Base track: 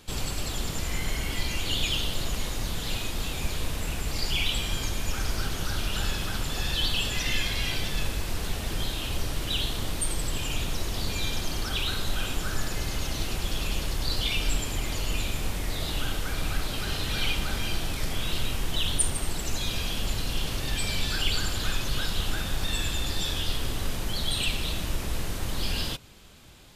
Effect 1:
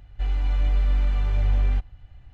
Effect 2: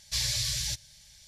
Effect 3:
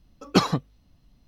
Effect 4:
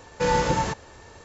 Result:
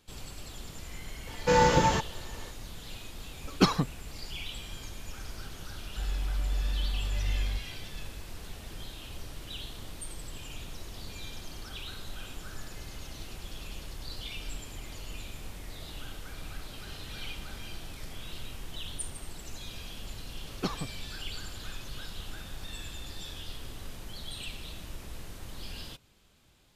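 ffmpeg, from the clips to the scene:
-filter_complex "[3:a]asplit=2[a][b];[0:a]volume=-12.5dB[c];[a]equalizer=f=610:t=o:w=0.77:g=-4.5[d];[4:a]atrim=end=1.24,asetpts=PTS-STARTPTS,afade=t=in:d=0.004:c=hsin,afade=t=out:st=1.236:d=0.004:c=hsin,adelay=1270[e];[d]atrim=end=1.27,asetpts=PTS-STARTPTS,volume=-3dB,afade=t=in:d=0.004:c=hsin,afade=t=out:st=1.266:d=0.004:c=hsin,adelay=3260[f];[1:a]atrim=end=2.33,asetpts=PTS-STARTPTS,volume=-9.5dB,afade=t=in:d=0.004:c=hsin,afade=t=out:st=2.326:d=0.004:c=hsin,adelay=5780[g];[b]atrim=end=1.27,asetpts=PTS-STARTPTS,volume=-13.5dB,afade=t=in:d=0.004:c=hsin,afade=t=out:st=1.266:d=0.004:c=hsin,adelay=20280[h];[c][e][f][g][h]amix=inputs=5:normalize=0"

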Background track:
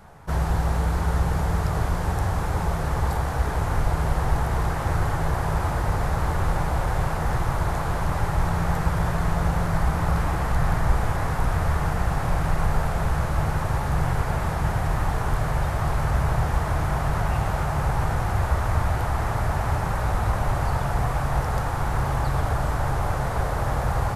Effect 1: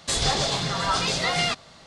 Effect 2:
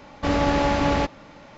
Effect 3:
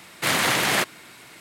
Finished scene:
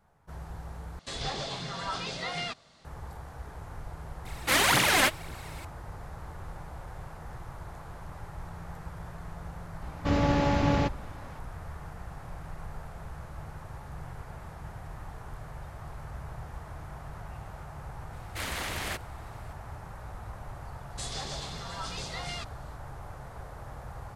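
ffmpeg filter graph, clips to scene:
-filter_complex "[1:a]asplit=2[a][b];[3:a]asplit=2[c][d];[0:a]volume=-18.5dB[e];[a]acrossover=split=4800[f][g];[g]acompressor=threshold=-39dB:ratio=4:attack=1:release=60[h];[f][h]amix=inputs=2:normalize=0[i];[c]aphaser=in_gain=1:out_gain=1:delay=4:decay=0.66:speed=1.9:type=triangular[j];[2:a]equalizer=f=120:t=o:w=1.5:g=9.5[k];[b]highshelf=f=8.5k:g=5.5[l];[e]asplit=2[m][n];[m]atrim=end=0.994[o];[i]atrim=end=1.86,asetpts=PTS-STARTPTS,volume=-10dB[p];[n]atrim=start=2.846[q];[j]atrim=end=1.4,asetpts=PTS-STARTPTS,volume=-4dB,afade=t=in:d=0.004:c=hsin,afade=t=out:st=1.396:d=0.004:c=hsin,adelay=187425S[r];[k]atrim=end=1.57,asetpts=PTS-STARTPTS,volume=-6.5dB,afade=t=in:d=0.004:c=hsin,afade=t=out:st=1.566:d=0.004:c=hsin,adelay=9820[s];[d]atrim=end=1.4,asetpts=PTS-STARTPTS,volume=-14dB,afade=t=in:d=0.004:c=hsin,afade=t=out:st=1.396:d=0.004:c=hsin,adelay=18130[t];[l]atrim=end=1.86,asetpts=PTS-STARTPTS,volume=-15dB,afade=t=in:d=0.004:c=hsin,afade=t=out:st=1.856:d=0.004:c=hsin,adelay=20900[u];[o][p]acrossfade=d=0.004:c1=hsin:c2=hsin[v];[v][q]acrossfade=d=0.004:c1=hsin:c2=hsin[w];[w][r][s][t][u]amix=inputs=5:normalize=0"

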